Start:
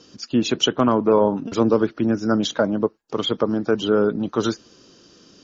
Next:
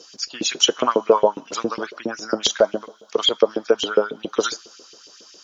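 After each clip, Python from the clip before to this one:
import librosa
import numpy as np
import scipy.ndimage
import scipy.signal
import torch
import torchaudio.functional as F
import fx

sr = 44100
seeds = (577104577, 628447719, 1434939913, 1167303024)

y = fx.bass_treble(x, sr, bass_db=12, treble_db=12)
y = fx.rev_double_slope(y, sr, seeds[0], early_s=0.39, late_s=3.5, knee_db=-17, drr_db=18.0)
y = fx.filter_lfo_highpass(y, sr, shape='saw_up', hz=7.3, low_hz=400.0, high_hz=2900.0, q=2.9)
y = F.gain(torch.from_numpy(y), -2.0).numpy()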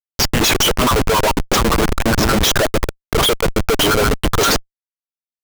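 y = fx.schmitt(x, sr, flips_db=-30.5)
y = F.gain(torch.from_numpy(y), 8.5).numpy()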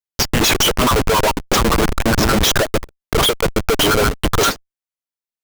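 y = fx.end_taper(x, sr, db_per_s=350.0)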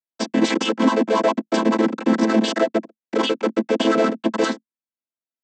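y = fx.chord_vocoder(x, sr, chord='minor triad', root=57)
y = F.gain(torch.from_numpy(y), -1.5).numpy()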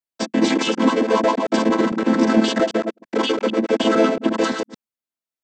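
y = fx.reverse_delay(x, sr, ms=113, wet_db=-5.0)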